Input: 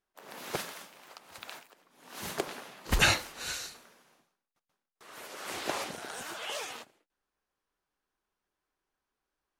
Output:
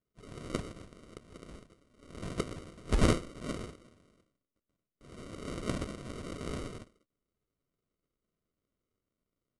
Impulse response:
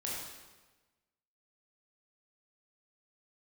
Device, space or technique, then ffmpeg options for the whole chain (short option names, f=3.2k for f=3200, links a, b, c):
crushed at another speed: -af "asetrate=88200,aresample=44100,acrusher=samples=26:mix=1:aa=0.000001,asetrate=22050,aresample=44100"